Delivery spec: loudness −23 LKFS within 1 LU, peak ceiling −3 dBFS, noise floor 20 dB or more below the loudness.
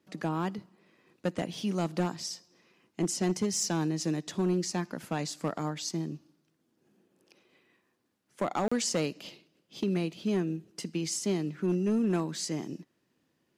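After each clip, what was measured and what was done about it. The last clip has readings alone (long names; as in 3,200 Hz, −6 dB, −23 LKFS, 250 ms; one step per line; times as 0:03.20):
share of clipped samples 1.0%; peaks flattened at −22.0 dBFS; number of dropouts 1; longest dropout 35 ms; integrated loudness −32.0 LKFS; sample peak −22.0 dBFS; target loudness −23.0 LKFS
→ clipped peaks rebuilt −22 dBFS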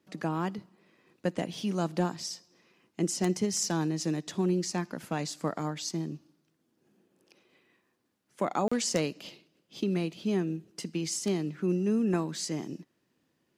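share of clipped samples 0.0%; number of dropouts 1; longest dropout 35 ms
→ repair the gap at 0:08.68, 35 ms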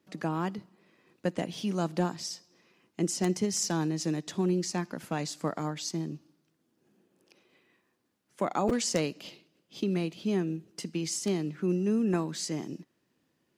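number of dropouts 0; integrated loudness −31.5 LKFS; sample peak −13.0 dBFS; target loudness −23.0 LKFS
→ level +8.5 dB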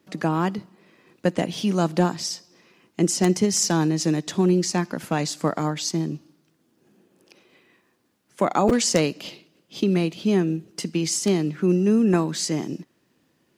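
integrated loudness −23.0 LKFS; sample peak −4.5 dBFS; background noise floor −67 dBFS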